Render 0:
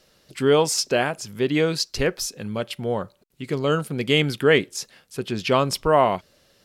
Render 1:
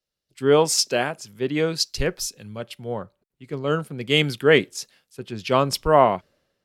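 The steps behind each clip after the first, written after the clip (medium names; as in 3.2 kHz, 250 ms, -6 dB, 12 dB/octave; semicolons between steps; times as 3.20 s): three bands expanded up and down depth 70%; trim -1.5 dB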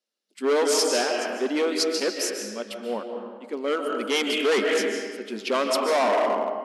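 algorithmic reverb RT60 1.6 s, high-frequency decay 0.7×, pre-delay 105 ms, DRR 4 dB; hard clipper -18.5 dBFS, distortion -7 dB; FFT band-pass 200–12000 Hz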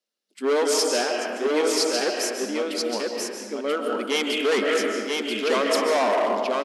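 delay 984 ms -3.5 dB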